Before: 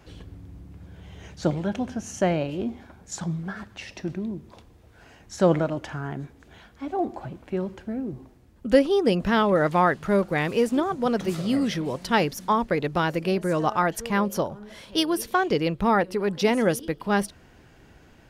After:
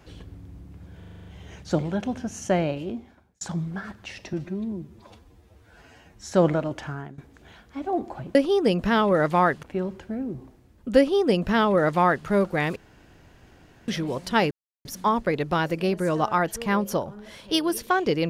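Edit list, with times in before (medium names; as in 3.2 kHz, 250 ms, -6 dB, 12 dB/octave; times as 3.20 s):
0.98 s: stutter 0.04 s, 8 plays
2.40–3.13 s: fade out
4.05–5.37 s: stretch 1.5×
5.96–6.24 s: fade out, to -18 dB
8.76–10.04 s: copy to 7.41 s
10.54–11.66 s: room tone
12.29 s: insert silence 0.34 s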